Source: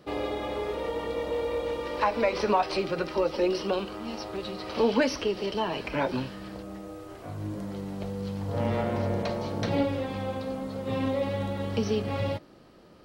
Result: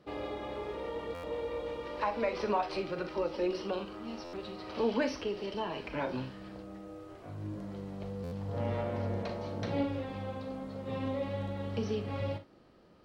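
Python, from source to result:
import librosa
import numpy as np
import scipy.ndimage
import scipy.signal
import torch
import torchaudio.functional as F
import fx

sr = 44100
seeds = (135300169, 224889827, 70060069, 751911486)

y = fx.high_shelf(x, sr, hz=7300.0, db=-10.5)
y = fx.room_early_taps(y, sr, ms=(39, 61), db=(-11.5, -14.5))
y = fx.buffer_glitch(y, sr, at_s=(1.14, 4.24, 8.23), block=512, repeats=7)
y = y * 10.0 ** (-7.0 / 20.0)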